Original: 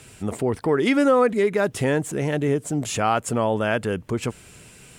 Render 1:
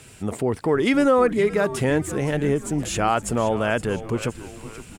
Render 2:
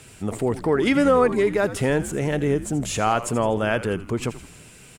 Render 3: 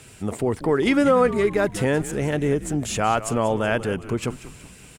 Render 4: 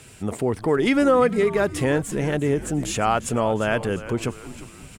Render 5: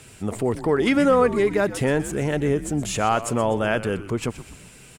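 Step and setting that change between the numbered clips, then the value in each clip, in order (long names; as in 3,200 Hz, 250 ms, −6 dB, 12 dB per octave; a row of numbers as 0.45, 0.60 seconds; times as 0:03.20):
echo with shifted repeats, delay time: 518, 82, 187, 351, 124 milliseconds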